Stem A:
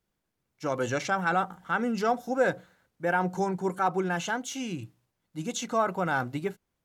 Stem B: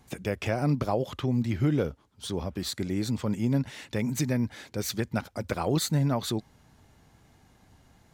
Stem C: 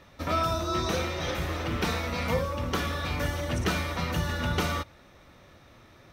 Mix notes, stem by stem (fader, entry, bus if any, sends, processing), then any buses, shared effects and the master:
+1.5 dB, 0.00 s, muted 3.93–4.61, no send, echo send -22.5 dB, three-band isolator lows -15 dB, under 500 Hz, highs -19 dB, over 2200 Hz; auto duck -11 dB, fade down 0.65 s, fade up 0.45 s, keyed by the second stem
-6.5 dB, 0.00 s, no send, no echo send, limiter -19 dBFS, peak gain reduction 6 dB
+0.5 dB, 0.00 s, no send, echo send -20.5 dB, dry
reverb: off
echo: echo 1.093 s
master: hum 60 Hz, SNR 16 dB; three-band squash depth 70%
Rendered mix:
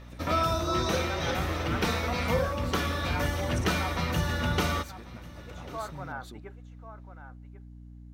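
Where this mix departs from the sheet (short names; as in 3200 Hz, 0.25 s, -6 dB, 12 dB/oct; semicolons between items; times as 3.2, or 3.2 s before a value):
stem B -6.5 dB -> -17.5 dB; master: missing three-band squash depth 70%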